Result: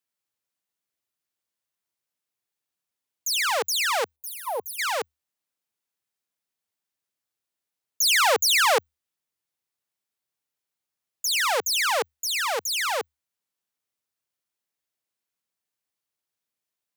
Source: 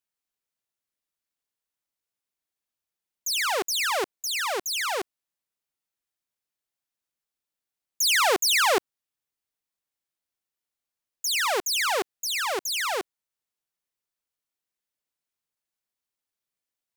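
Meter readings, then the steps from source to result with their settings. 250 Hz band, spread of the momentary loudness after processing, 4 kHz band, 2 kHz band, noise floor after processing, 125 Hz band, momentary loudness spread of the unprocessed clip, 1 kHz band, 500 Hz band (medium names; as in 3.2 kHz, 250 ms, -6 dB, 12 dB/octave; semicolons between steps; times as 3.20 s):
-11.0 dB, 13 LU, +1.0 dB, +1.5 dB, under -85 dBFS, no reading, 11 LU, +1.5 dB, +1.0 dB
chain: time-frequency box 4.16–4.79 s, 1–9 kHz -18 dB; frequency shift +74 Hz; trim +1.5 dB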